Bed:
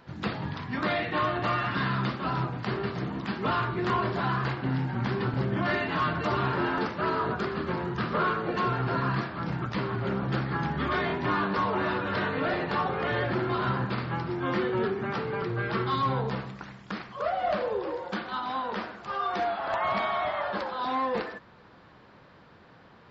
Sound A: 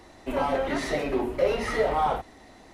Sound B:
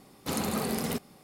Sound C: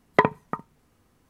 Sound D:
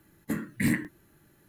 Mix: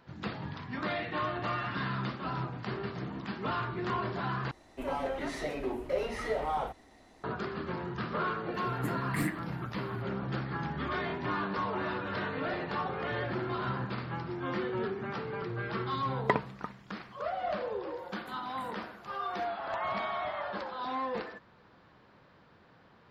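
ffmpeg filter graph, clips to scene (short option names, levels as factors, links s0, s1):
-filter_complex "[4:a]asplit=2[s0][s1];[0:a]volume=0.501[s2];[s0]aecho=1:1:6.3:0.52[s3];[s1]acompressor=threshold=0.0141:ratio=6:attack=3.2:release=140:knee=1:detection=peak[s4];[s2]asplit=2[s5][s6];[s5]atrim=end=4.514[s7];[1:a]atrim=end=2.73,asetpts=PTS-STARTPTS,volume=0.398[s8];[s6]atrim=start=7.236[s9];[s3]atrim=end=1.48,asetpts=PTS-STARTPTS,volume=0.447,afade=t=in:d=0.004:c=hsin,afade=t=out:st=1.476:d=0.004:c=hsin,adelay=8540[s10];[3:a]atrim=end=1.29,asetpts=PTS-STARTPTS,volume=0.355,afade=t=in:d=0.004:c=hsin,afade=t=out:st=1.286:d=0.004:c=hsin,adelay=16110[s11];[s4]atrim=end=1.48,asetpts=PTS-STARTPTS,volume=0.335,afade=t=in:d=0.004:c=hsin,afade=t=out:st=1.476:d=0.004:c=hsin,adelay=17980[s12];[s7][s8]acrossfade=d=0.004:c1=hsin:c2=hsin[s13];[s13][s9]acrossfade=d=0.004:c1=hsin:c2=hsin[s14];[s14][s10][s11][s12]amix=inputs=4:normalize=0"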